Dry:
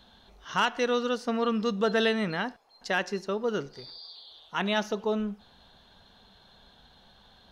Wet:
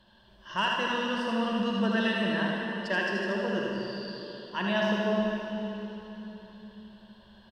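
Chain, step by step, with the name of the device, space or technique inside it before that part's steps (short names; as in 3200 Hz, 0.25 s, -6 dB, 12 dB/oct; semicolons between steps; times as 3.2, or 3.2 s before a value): ripple EQ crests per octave 1.3, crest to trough 11 dB; echo 79 ms -4.5 dB; swimming-pool hall (reverb RT60 3.6 s, pre-delay 37 ms, DRR -0.5 dB; high shelf 5300 Hz -6 dB); gain -5 dB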